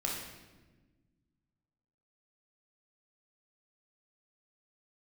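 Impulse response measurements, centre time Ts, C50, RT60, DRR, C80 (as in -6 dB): 59 ms, 1.5 dB, 1.3 s, -2.5 dB, 4.5 dB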